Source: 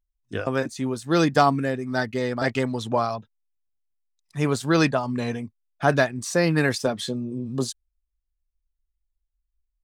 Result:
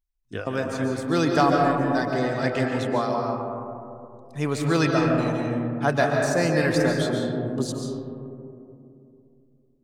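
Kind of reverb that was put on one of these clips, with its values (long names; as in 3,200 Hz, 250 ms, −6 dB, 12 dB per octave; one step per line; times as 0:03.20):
comb and all-pass reverb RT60 2.8 s, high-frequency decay 0.25×, pre-delay 100 ms, DRR 0 dB
level −3 dB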